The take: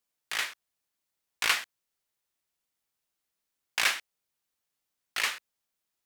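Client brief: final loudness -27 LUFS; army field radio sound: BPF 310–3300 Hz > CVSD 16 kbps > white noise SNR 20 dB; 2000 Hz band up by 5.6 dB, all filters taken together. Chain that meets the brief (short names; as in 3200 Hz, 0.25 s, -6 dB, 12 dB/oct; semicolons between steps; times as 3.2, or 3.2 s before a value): BPF 310–3300 Hz; bell 2000 Hz +7.5 dB; CVSD 16 kbps; white noise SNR 20 dB; gain +6 dB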